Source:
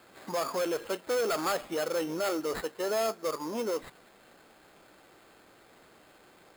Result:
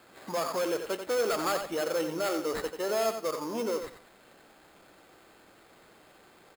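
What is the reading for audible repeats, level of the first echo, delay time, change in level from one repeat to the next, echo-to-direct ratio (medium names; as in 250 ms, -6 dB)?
2, -8.0 dB, 89 ms, -14.5 dB, -8.0 dB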